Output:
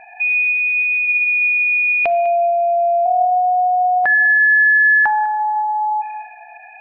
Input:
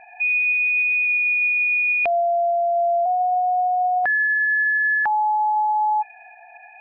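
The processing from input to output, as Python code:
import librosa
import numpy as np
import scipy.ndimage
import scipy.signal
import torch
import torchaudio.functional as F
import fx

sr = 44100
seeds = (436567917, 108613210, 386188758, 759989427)

p1 = x + fx.echo_single(x, sr, ms=200, db=-16.0, dry=0)
p2 = fx.room_shoebox(p1, sr, seeds[0], volume_m3=2400.0, walls='mixed', distance_m=0.58)
y = F.gain(torch.from_numpy(p2), 4.5).numpy()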